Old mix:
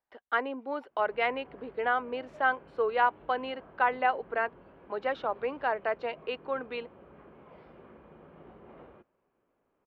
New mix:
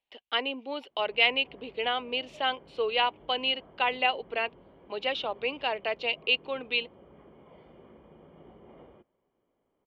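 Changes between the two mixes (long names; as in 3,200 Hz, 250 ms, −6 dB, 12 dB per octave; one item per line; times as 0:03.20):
background: add Savitzky-Golay smoothing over 41 samples
master: add high shelf with overshoot 2,100 Hz +10.5 dB, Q 3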